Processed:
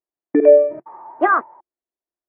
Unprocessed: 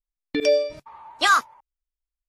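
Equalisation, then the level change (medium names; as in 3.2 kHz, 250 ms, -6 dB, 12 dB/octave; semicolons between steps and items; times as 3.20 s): distance through air 490 m; cabinet simulation 300–2000 Hz, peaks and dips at 350 Hz +10 dB, 680 Hz +7 dB, 1 kHz +3 dB, 1.8 kHz +5 dB; tilt shelf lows +7.5 dB, about 910 Hz; +4.5 dB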